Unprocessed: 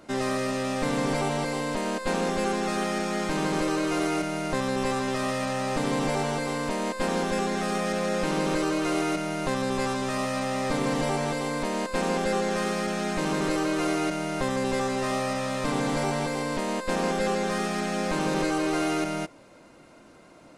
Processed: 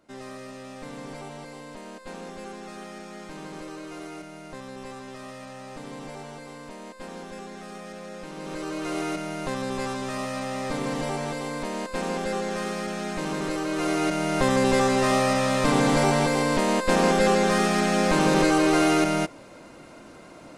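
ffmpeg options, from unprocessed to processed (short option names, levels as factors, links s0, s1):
-af "volume=2,afade=t=in:st=8.35:d=0.69:silence=0.316228,afade=t=in:st=13.65:d=0.87:silence=0.375837"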